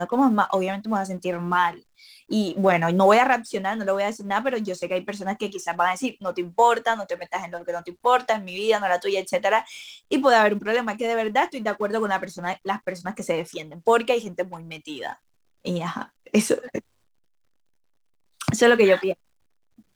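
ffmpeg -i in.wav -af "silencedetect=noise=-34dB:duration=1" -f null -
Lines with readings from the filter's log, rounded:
silence_start: 16.79
silence_end: 18.41 | silence_duration: 1.61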